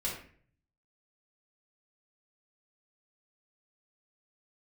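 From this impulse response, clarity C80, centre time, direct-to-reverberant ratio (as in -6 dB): 8.5 dB, 35 ms, -6.5 dB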